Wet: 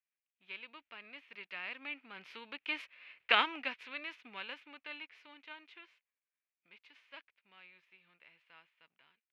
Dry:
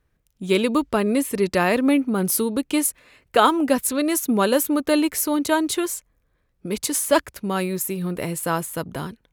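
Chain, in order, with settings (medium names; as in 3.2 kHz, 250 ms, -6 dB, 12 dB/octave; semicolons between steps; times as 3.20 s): formants flattened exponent 0.6; Doppler pass-by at 3.15 s, 6 m/s, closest 1.3 m; band-pass filter 2.5 kHz, Q 3.2; distance through air 310 m; trim +7.5 dB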